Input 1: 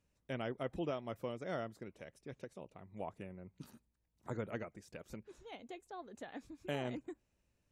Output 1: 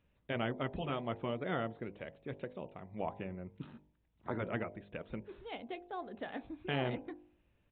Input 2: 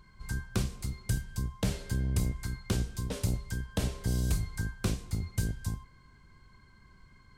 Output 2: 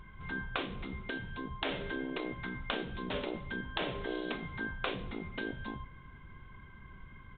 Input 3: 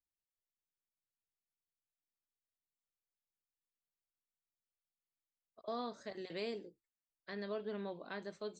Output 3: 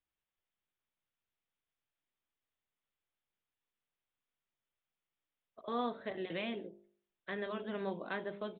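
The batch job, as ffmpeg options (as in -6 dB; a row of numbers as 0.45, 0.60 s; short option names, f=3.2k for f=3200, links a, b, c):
-af "afftfilt=real='re*lt(hypot(re,im),0.0794)':imag='im*lt(hypot(re,im),0.0794)':win_size=1024:overlap=0.75,bandreject=f=50.35:t=h:w=4,bandreject=f=100.7:t=h:w=4,bandreject=f=151.05:t=h:w=4,bandreject=f=201.4:t=h:w=4,bandreject=f=251.75:t=h:w=4,bandreject=f=302.1:t=h:w=4,bandreject=f=352.45:t=h:w=4,bandreject=f=402.8:t=h:w=4,bandreject=f=453.15:t=h:w=4,bandreject=f=503.5:t=h:w=4,bandreject=f=553.85:t=h:w=4,bandreject=f=604.2:t=h:w=4,bandreject=f=654.55:t=h:w=4,bandreject=f=704.9:t=h:w=4,bandreject=f=755.25:t=h:w=4,bandreject=f=805.6:t=h:w=4,bandreject=f=855.95:t=h:w=4,bandreject=f=906.3:t=h:w=4,bandreject=f=956.65:t=h:w=4,bandreject=f=1.007k:t=h:w=4,aresample=8000,aresample=44100,volume=6.5dB"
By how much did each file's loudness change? +4.0, -4.5, +4.0 LU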